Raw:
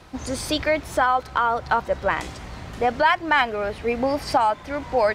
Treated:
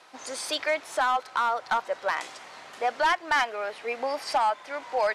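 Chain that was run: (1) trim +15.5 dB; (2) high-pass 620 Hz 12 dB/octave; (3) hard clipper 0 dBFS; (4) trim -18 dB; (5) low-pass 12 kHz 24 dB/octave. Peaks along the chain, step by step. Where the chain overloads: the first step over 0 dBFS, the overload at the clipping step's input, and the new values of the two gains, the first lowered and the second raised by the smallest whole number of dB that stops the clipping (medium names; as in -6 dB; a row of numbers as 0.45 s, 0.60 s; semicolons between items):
+9.5 dBFS, +8.5 dBFS, 0.0 dBFS, -18.0 dBFS, -17.0 dBFS; step 1, 8.5 dB; step 1 +6.5 dB, step 4 -9 dB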